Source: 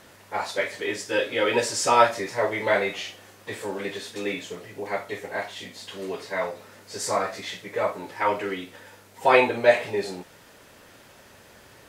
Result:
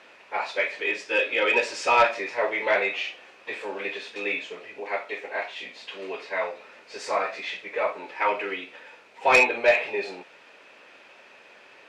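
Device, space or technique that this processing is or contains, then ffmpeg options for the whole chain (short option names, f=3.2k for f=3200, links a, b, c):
intercom: -filter_complex "[0:a]highpass=390,lowpass=3.9k,equalizer=f=2.5k:t=o:w=0.28:g=11,asoftclip=type=tanh:threshold=-9.5dB,asettb=1/sr,asplit=3[a][b][c];[a]atrim=end=4.794[d];[b]atrim=start=4.79:end=5.59,asetpts=PTS-STARTPTS,afade=t=in:d=0.004:c=qsin,afade=t=out:st=0.796:d=0.004:c=qsin,highpass=190[e];[c]atrim=start=5.586[f];[d][e]acrossfade=d=0.004:c1=hsin:c2=qsin[g];[g][f]acrossfade=d=0.004:c1=qsin:c2=hsin"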